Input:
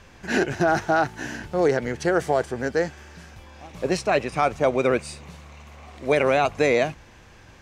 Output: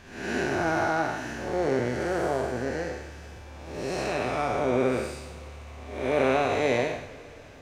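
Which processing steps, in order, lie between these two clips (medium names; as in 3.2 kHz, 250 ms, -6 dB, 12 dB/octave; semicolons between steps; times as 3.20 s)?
spectral blur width 263 ms; two-slope reverb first 0.33 s, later 4.9 s, from -21 dB, DRR 7 dB; harmony voices +7 st -14 dB; trim -1 dB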